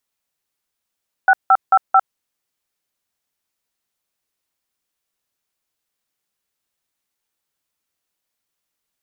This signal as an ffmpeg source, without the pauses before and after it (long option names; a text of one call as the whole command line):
ffmpeg -f lavfi -i "aevalsrc='0.299*clip(min(mod(t,0.221),0.053-mod(t,0.221))/0.002,0,1)*(eq(floor(t/0.221),0)*(sin(2*PI*770*mod(t,0.221))+sin(2*PI*1477*mod(t,0.221)))+eq(floor(t/0.221),1)*(sin(2*PI*770*mod(t,0.221))+sin(2*PI*1336*mod(t,0.221)))+eq(floor(t/0.221),2)*(sin(2*PI*770*mod(t,0.221))+sin(2*PI*1336*mod(t,0.221)))+eq(floor(t/0.221),3)*(sin(2*PI*770*mod(t,0.221))+sin(2*PI*1336*mod(t,0.221))))':duration=0.884:sample_rate=44100" out.wav